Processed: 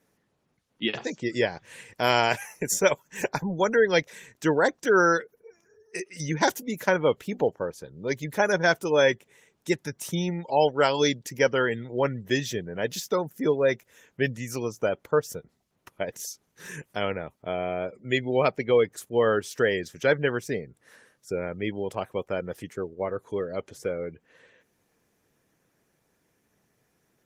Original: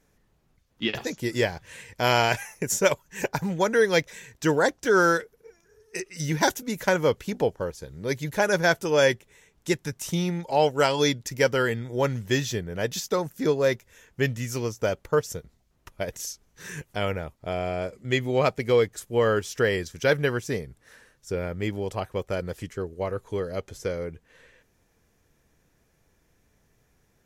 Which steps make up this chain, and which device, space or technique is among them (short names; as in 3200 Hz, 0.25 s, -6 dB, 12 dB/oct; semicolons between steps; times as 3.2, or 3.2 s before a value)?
noise-suppressed video call (HPF 150 Hz 12 dB/oct; spectral gate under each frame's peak -30 dB strong; Opus 24 kbps 48000 Hz)